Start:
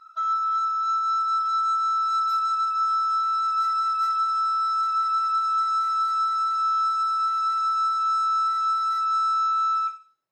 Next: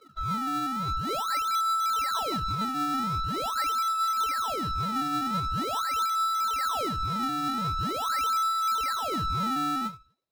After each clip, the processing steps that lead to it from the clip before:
parametric band 3,900 Hz +12 dB 0.31 octaves
in parallel at −2 dB: sample-and-hold swept by an LFO 24×, swing 160% 0.44 Hz
on the sum: level −8 dB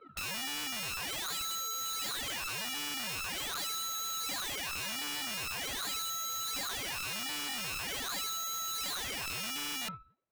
low-pass filter 2,700 Hz 24 dB per octave
brickwall limiter −29 dBFS, peak gain reduction 8 dB
wrap-around overflow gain 33 dB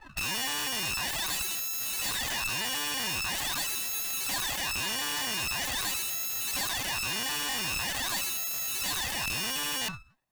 lower of the sound and its delayed copy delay 1.1 ms
level +7.5 dB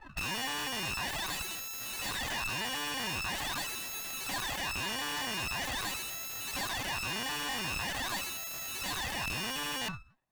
high-shelf EQ 3,600 Hz −9 dB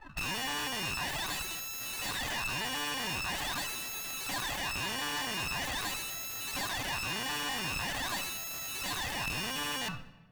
rectangular room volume 900 cubic metres, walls mixed, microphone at 0.37 metres

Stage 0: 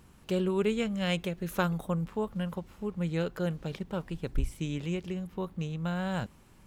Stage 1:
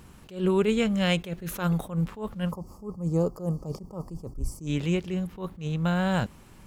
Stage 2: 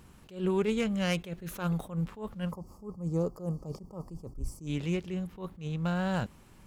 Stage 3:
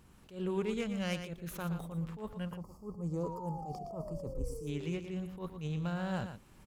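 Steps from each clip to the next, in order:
gain on a spectral selection 0:02.51–0:04.67, 1,300–4,400 Hz −23 dB; in parallel at −1 dB: brickwall limiter −22.5 dBFS, peak gain reduction 9 dB; on the sum: level that may rise only so fast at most 160 dB per second; level +1.5 dB
phase distortion by the signal itself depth 0.064 ms; level −5 dB
camcorder AGC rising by 10 dB per second; sound drawn into the spectrogram fall, 0:03.23–0:04.93, 370–1,000 Hz −39 dBFS; single-tap delay 116 ms −9 dB; level −6.5 dB

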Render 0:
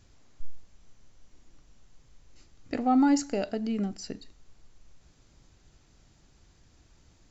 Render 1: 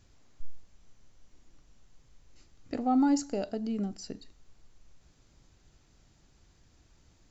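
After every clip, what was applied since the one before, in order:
dynamic equaliser 2,100 Hz, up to −7 dB, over −53 dBFS, Q 1.2
level −2.5 dB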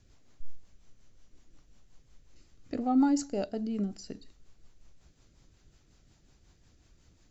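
rotating-speaker cabinet horn 5.5 Hz
level +1.5 dB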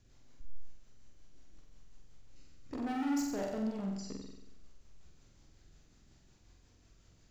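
gain into a clipping stage and back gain 32.5 dB
flutter between parallel walls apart 7.9 metres, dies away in 0.86 s
level −3.5 dB

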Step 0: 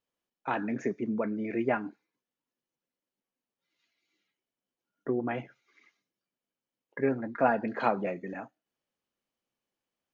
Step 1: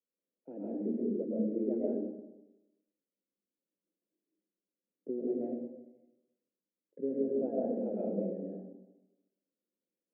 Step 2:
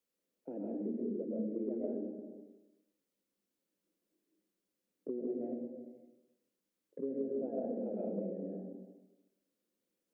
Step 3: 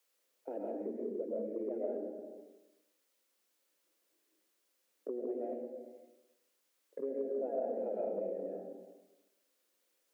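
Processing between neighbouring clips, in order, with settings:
elliptic band-pass filter 170–540 Hz, stop band 40 dB; comb and all-pass reverb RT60 1 s, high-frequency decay 0.55×, pre-delay 85 ms, DRR −5.5 dB; level −6.5 dB
downward compressor 2 to 1, threshold −49 dBFS, peak gain reduction 12 dB; level +6 dB
high-pass filter 660 Hz 12 dB per octave; in parallel at +2 dB: brickwall limiter −40.5 dBFS, peak gain reduction 7.5 dB; on the sum: level +3.5 dB

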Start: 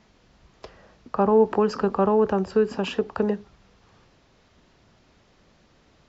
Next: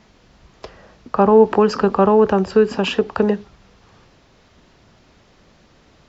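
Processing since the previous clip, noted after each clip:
dynamic equaliser 3,100 Hz, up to +3 dB, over −45 dBFS, Q 0.71
level +6.5 dB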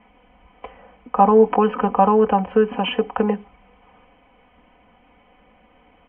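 Chebyshev low-pass with heavy ripple 3,200 Hz, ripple 9 dB
comb filter 4 ms, depth 95%
level +1.5 dB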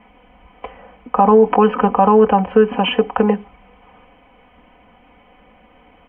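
boost into a limiter +6 dB
level −1 dB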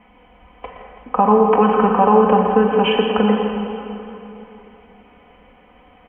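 on a send: single-tap delay 119 ms −9.5 dB
on the sum: dense smooth reverb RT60 3.1 s, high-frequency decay 0.8×, DRR 3 dB
feedback echo with a swinging delay time 165 ms, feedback 58%, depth 66 cents, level −13 dB
level −2 dB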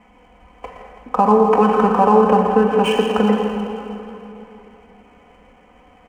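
running median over 9 samples

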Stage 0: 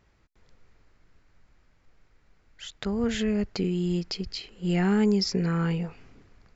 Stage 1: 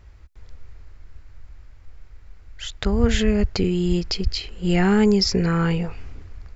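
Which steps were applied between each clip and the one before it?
low shelf with overshoot 110 Hz +11.5 dB, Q 1.5
level +7.5 dB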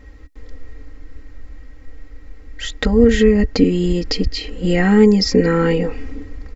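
comb filter 3.8 ms, depth 85%
downward compressor 2 to 1, threshold −20 dBFS, peak gain reduction 7 dB
hollow resonant body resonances 290/430/1,900 Hz, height 16 dB, ringing for 60 ms
level +2.5 dB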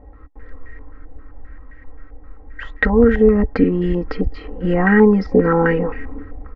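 low-pass on a step sequencer 7.6 Hz 760–1,800 Hz
level −1.5 dB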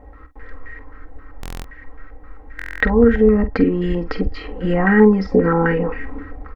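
double-tracking delay 47 ms −12 dB
buffer that repeats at 0:01.41/0:02.57, samples 1,024, times 9
one half of a high-frequency compander encoder only
level −1 dB

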